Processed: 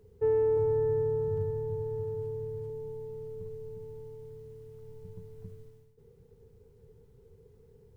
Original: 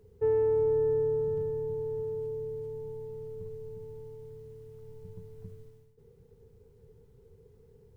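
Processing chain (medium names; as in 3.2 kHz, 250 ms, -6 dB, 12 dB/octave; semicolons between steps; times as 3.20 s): 0.57–2.70 s: graphic EQ with 31 bands 100 Hz +11 dB, 315 Hz -12 dB, 1 kHz +5 dB, 1.6 kHz +4 dB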